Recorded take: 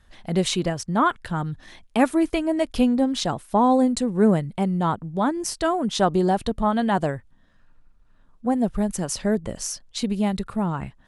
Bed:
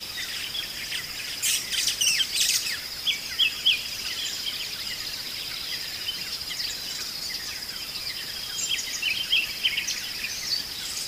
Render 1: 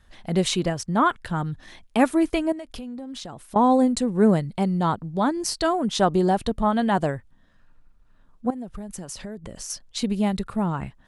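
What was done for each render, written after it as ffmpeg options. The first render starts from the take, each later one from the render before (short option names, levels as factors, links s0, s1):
-filter_complex "[0:a]asettb=1/sr,asplit=3[s0][s1][s2];[s0]atrim=end=2.524[s3];[s1]atrim=start=2.52:end=3.56,asetpts=PTS-STARTPTS,afade=t=in:d=0.004:c=qsin,afade=t=out:st=1.036:d=0.004:c=qsin,acompressor=threshold=0.0224:ratio=8:attack=3.2:release=140:knee=1:detection=peak[s4];[s2]atrim=start=3.556[s5];[s3][s4]acrossfade=d=0.004:c1=hsin:c2=qsin[s6];[s6][s5]acrossfade=d=0.004:c1=qsin:c2=hsin,asettb=1/sr,asplit=3[s7][s8][s9];[s7]atrim=end=4.294[s10];[s8]atrim=start=4.29:end=5.73,asetpts=PTS-STARTPTS,afade=t=in:d=0.004:c=qsin,afade=t=out:st=1.436:d=0.004:c=qsin,equalizer=f=4400:w=4.2:g=8.5[s11];[s9]atrim=start=5.726[s12];[s10][s11]acrossfade=d=0.004:c1=hsin:c2=qsin[s13];[s13][s12]acrossfade=d=0.004:c1=qsin:c2=hsin,asettb=1/sr,asplit=3[s14][s15][s16];[s14]atrim=end=8.504[s17];[s15]atrim=start=8.5:end=9.7,asetpts=PTS-STARTPTS,afade=t=in:d=0.004:c=qsin,afade=t=out:st=1.196:d=0.004:c=qsin,acompressor=threshold=0.0251:ratio=6:attack=3.2:release=140:knee=1:detection=peak[s18];[s16]atrim=start=9.696[s19];[s17][s18]acrossfade=d=0.004:c1=hsin:c2=qsin[s20];[s20][s19]acrossfade=d=0.004:c1=qsin:c2=hsin"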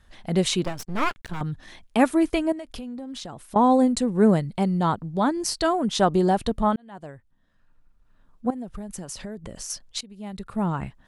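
-filter_complex "[0:a]asettb=1/sr,asplit=3[s0][s1][s2];[s0]atrim=end=0.644[s3];[s1]atrim=start=0.64:end=1.41,asetpts=PTS-STARTPTS,afade=t=in:d=0.004:c=qsin,afade=t=out:st=0.766:d=0.004:c=qsin,aeval=exprs='max(val(0),0)':c=same[s4];[s2]atrim=start=1.406[s5];[s3][s4]acrossfade=d=0.004:c1=hsin:c2=qsin[s6];[s6][s5]acrossfade=d=0.004:c1=qsin:c2=hsin,asplit=3[s7][s8][s9];[s7]atrim=end=6.76,asetpts=PTS-STARTPTS,afade=t=out:st=6.756:d=0.004:c=hsin[s10];[s8]atrim=start=6.76:end=10.01,asetpts=PTS-STARTPTS,afade=t=in:d=1.79,afade=t=out:st=3.246:d=0.004:c=hsin:silence=0.0749894[s11];[s9]atrim=start=10.01,asetpts=PTS-STARTPTS,afade=t=in:d=0.64:c=qua:silence=0.0749894[s12];[s10][s11][s12]concat=n=3:v=0:a=1"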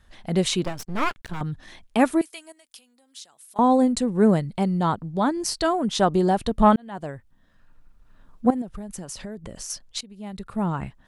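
-filter_complex "[0:a]asettb=1/sr,asplit=3[s0][s1][s2];[s0]atrim=end=2.214[s3];[s1]atrim=start=2.21:end=3.59,asetpts=PTS-STARTPTS,afade=t=in:d=0.004:c=qsin,afade=t=out:st=1.376:d=0.004:c=qsin,aderivative[s4];[s2]atrim=start=3.586[s5];[s3][s4]acrossfade=d=0.004:c1=hsin:c2=qsin[s6];[s6][s5]acrossfade=d=0.004:c1=qsin:c2=hsin,asettb=1/sr,asplit=3[s7][s8][s9];[s7]atrim=end=6.594[s10];[s8]atrim=start=6.59:end=8.62,asetpts=PTS-STARTPTS,afade=t=in:d=0.004:c=qsin,afade=t=out:st=2.026:d=0.004:c=qsin,acontrast=67[s11];[s9]atrim=start=8.616[s12];[s10][s11]acrossfade=d=0.004:c1=hsin:c2=qsin[s13];[s13][s12]acrossfade=d=0.004:c1=qsin:c2=hsin"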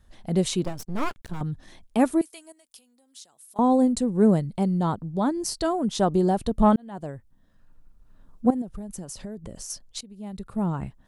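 -af "equalizer=f=2100:t=o:w=2.6:g=-8"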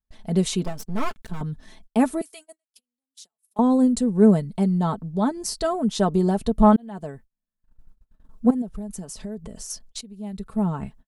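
-af "aecho=1:1:4.6:0.55,agate=range=0.0282:threshold=0.00562:ratio=16:detection=peak"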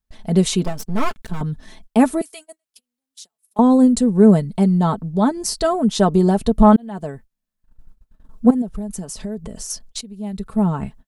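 -af "volume=1.88,alimiter=limit=0.794:level=0:latency=1"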